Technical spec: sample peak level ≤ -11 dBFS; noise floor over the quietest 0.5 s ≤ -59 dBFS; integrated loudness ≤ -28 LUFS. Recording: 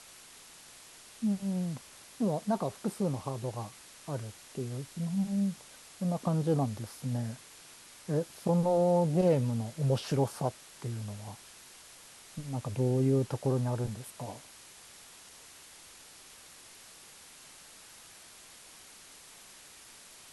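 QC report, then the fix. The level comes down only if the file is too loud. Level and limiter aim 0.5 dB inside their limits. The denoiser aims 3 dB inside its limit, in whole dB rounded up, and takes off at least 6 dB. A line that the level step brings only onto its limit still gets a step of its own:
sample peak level -15.5 dBFS: OK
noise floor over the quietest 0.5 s -53 dBFS: fail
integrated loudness -32.5 LUFS: OK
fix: denoiser 9 dB, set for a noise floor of -53 dBFS

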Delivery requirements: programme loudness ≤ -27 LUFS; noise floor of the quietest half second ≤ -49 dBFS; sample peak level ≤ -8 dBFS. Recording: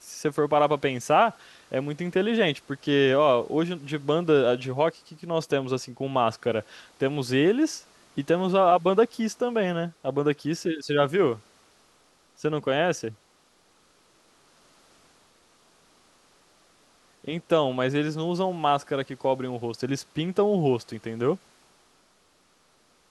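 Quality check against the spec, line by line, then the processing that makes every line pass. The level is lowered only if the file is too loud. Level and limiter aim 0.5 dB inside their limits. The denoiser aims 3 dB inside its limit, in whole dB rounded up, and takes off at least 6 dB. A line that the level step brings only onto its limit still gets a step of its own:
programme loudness -25.5 LUFS: fail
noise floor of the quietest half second -63 dBFS: OK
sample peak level -7.5 dBFS: fail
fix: gain -2 dB

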